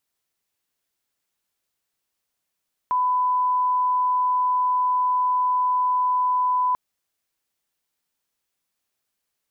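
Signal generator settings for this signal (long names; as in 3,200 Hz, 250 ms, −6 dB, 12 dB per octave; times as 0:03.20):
line-up tone −18 dBFS 3.84 s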